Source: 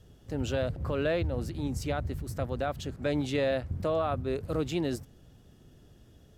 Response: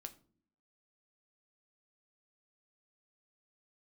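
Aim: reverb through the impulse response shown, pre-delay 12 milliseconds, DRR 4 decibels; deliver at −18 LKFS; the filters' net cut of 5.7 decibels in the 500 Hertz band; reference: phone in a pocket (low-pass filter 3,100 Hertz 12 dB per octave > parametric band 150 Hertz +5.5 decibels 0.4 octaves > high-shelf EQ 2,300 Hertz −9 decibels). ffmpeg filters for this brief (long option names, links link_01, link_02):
-filter_complex "[0:a]equalizer=frequency=500:width_type=o:gain=-6.5,asplit=2[link_01][link_02];[1:a]atrim=start_sample=2205,adelay=12[link_03];[link_02][link_03]afir=irnorm=-1:irlink=0,volume=1dB[link_04];[link_01][link_04]amix=inputs=2:normalize=0,lowpass=3100,equalizer=frequency=150:width_type=o:width=0.4:gain=5.5,highshelf=frequency=2300:gain=-9,volume=14dB"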